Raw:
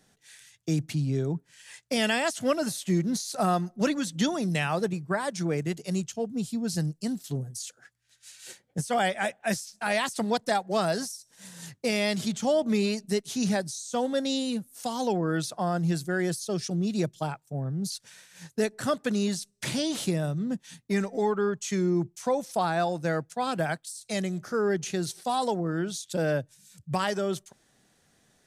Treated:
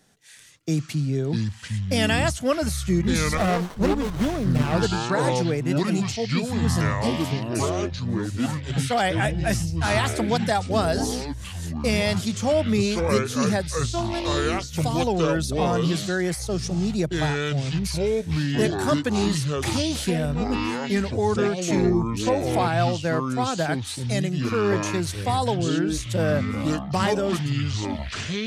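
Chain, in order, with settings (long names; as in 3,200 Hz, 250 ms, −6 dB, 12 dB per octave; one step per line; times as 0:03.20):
0:13.76–0:14.73: phases set to zero 343 Hz
delay with pitch and tempo change per echo 368 ms, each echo −6 semitones, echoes 3
0:03.37–0:04.75: windowed peak hold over 17 samples
level +3 dB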